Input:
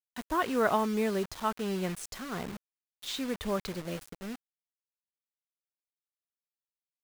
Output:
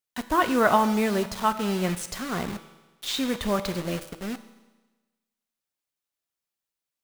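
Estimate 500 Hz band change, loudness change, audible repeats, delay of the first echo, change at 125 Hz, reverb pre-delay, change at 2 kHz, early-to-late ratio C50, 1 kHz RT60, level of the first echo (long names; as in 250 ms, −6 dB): +5.0 dB, +6.5 dB, no echo audible, no echo audible, +7.0 dB, 6 ms, +7.5 dB, 12.5 dB, 1.2 s, no echo audible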